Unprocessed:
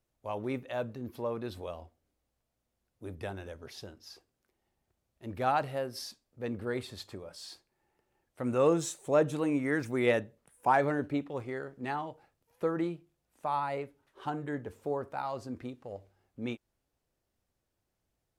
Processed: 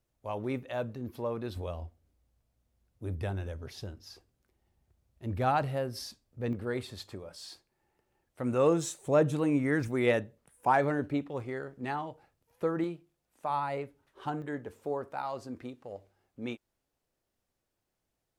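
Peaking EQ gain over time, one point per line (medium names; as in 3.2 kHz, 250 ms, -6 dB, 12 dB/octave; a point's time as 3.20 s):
peaking EQ 62 Hz 2.7 oct
+4 dB
from 1.56 s +12.5 dB
from 6.53 s +3 dB
from 9.03 s +10.5 dB
from 9.88 s +3.5 dB
from 12.84 s -4 dB
from 13.50 s +4 dB
from 14.42 s -5 dB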